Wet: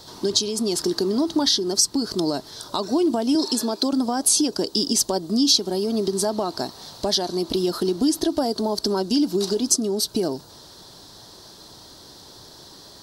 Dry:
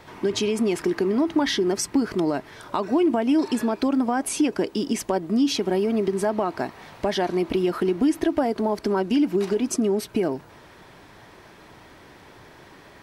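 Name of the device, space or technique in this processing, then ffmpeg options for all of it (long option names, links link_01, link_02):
over-bright horn tweeter: -filter_complex "[0:a]asettb=1/sr,asplit=3[link_01][link_02][link_03];[link_01]atrim=end=3.354[link_04];[link_02]atrim=start=3.35:end=3.93,asetpts=PTS-STARTPTS,afade=type=in:duration=0.004:curve=qsin,afade=type=out:start_time=0.576:duration=0.004:curve=qsin,highpass=200[link_05];[link_03]atrim=start=3.926[link_06];[link_04][link_05]acrossfade=duration=0.004:curve1=hsin:curve2=qsin[link_07];[link_07][link_06]acrossfade=duration=0.004:curve1=qsin:curve2=hsin,equalizer=frequency=2100:width=1.7:gain=-5,highshelf=frequency=3200:width_type=q:width=3:gain=10.5,alimiter=limit=-6dB:level=0:latency=1:release=446"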